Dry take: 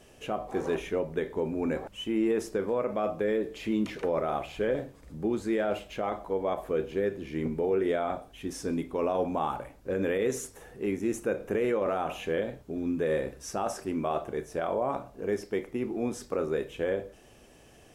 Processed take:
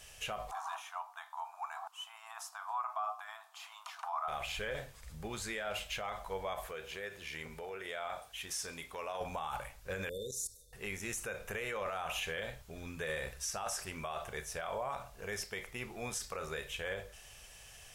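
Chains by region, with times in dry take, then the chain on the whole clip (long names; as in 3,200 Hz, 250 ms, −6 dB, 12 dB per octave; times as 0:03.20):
0:00.51–0:04.28: linear-phase brick-wall high-pass 650 Hz + high shelf with overshoot 1,500 Hz −9.5 dB, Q 3
0:06.67–0:09.21: bass and treble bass −8 dB, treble 0 dB + downward compressor 2.5 to 1, threshold −32 dBFS + high-pass filter 48 Hz
0:10.09–0:10.73: output level in coarse steps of 15 dB + linear-phase brick-wall band-stop 610–3,500 Hz
whole clip: guitar amp tone stack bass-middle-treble 10-0-10; brickwall limiter −37 dBFS; level +8.5 dB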